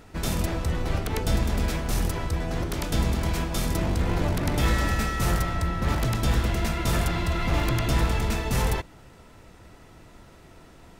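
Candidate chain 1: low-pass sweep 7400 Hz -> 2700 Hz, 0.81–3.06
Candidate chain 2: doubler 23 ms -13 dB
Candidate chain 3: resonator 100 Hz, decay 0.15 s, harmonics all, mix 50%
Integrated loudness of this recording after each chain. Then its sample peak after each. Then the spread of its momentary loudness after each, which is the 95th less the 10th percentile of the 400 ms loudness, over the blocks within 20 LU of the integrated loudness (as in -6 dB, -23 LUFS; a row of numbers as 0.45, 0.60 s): -25.5, -26.5, -30.0 LUFS; -11.5, -11.5, -16.0 dBFS; 5, 4, 4 LU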